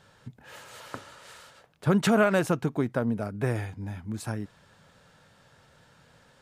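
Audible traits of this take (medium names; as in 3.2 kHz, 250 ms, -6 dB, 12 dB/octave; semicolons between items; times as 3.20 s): noise floor -60 dBFS; spectral tilt -6.0 dB/octave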